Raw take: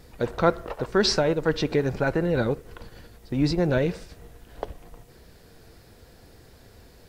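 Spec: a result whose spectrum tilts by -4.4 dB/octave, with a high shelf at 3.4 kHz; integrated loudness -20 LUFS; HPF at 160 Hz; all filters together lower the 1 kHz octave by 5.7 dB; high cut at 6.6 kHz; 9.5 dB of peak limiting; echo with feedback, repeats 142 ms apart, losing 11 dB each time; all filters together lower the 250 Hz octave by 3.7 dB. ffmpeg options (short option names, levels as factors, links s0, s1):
-af "highpass=160,lowpass=6600,equalizer=f=250:t=o:g=-3.5,equalizer=f=1000:t=o:g=-9,highshelf=f=3400:g=3.5,alimiter=limit=0.119:level=0:latency=1,aecho=1:1:142|284|426:0.282|0.0789|0.0221,volume=3.16"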